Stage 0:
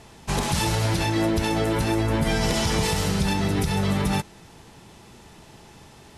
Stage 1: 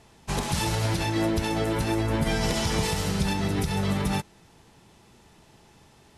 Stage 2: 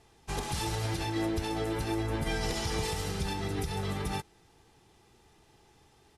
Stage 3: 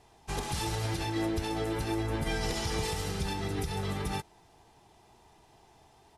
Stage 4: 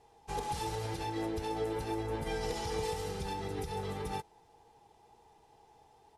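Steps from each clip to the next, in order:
upward expander 1.5:1, over -32 dBFS; gain -1.5 dB
comb 2.5 ms, depth 41%; gain -7 dB
band noise 630–990 Hz -65 dBFS
small resonant body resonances 470/830 Hz, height 12 dB, ringing for 45 ms; gain -7 dB

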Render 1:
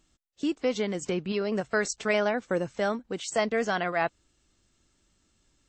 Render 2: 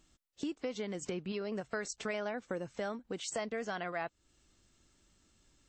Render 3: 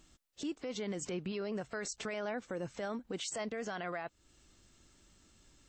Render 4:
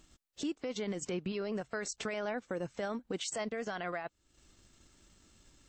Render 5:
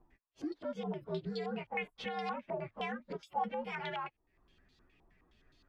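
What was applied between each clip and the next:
compressor 3:1, threshold -38 dBFS, peak gain reduction 12.5 dB
limiter -35 dBFS, peak gain reduction 10.5 dB; gain +4.5 dB
transient shaper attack +2 dB, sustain -7 dB; gain +1.5 dB
inharmonic rescaling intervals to 121%; stepped low-pass 9.6 Hz 900–4000 Hz; gain -1 dB

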